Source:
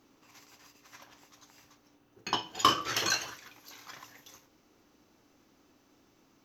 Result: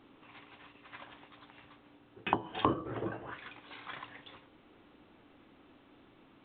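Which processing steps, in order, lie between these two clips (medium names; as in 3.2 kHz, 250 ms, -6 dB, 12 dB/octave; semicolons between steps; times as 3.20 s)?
low-pass that closes with the level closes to 500 Hz, closed at -28 dBFS; trim +4.5 dB; A-law 64 kbps 8 kHz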